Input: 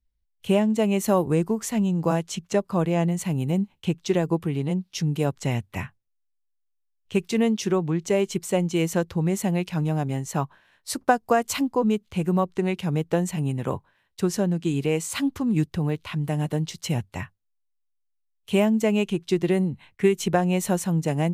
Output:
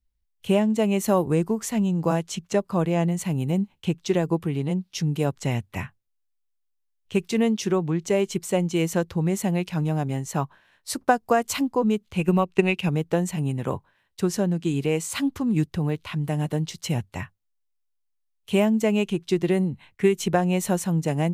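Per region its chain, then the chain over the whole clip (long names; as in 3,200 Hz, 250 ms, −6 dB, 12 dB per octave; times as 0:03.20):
0:12.18–0:12.89: parametric band 2,600 Hz +13 dB 0.31 octaves + transient designer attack +7 dB, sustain −3 dB
whole clip: no processing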